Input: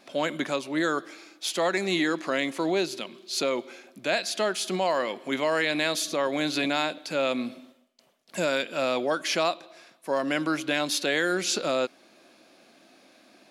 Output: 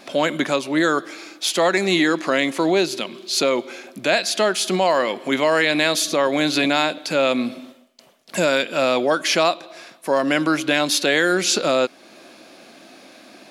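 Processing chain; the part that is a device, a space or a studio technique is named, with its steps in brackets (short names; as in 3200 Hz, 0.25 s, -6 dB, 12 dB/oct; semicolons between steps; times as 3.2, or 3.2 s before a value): parallel compression (in parallel at -2.5 dB: compressor, threshold -39 dBFS, peak gain reduction 17.5 dB); on the sum: gain +6.5 dB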